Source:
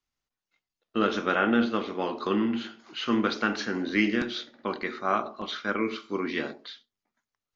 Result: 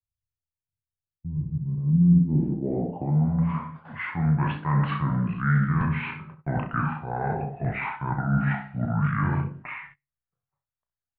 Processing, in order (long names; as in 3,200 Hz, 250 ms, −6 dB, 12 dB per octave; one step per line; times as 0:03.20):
gliding playback speed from 78% → 57%
reversed playback
downward compressor 10 to 1, threshold −32 dBFS, peak gain reduction 14 dB
reversed playback
parametric band 78 Hz +6 dB 0.54 octaves
double-tracking delay 20 ms −14 dB
ambience of single reflections 34 ms −10 dB, 64 ms −12 dB
noise gate −54 dBFS, range −20 dB
low shelf with overshoot 190 Hz +9.5 dB, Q 1.5
in parallel at −9.5 dB: soft clipping −27 dBFS, distortion −12 dB
on the sum: low-pass filter sweep 110 Hz → 1,600 Hz, 0:01.53–0:03.95
level +2.5 dB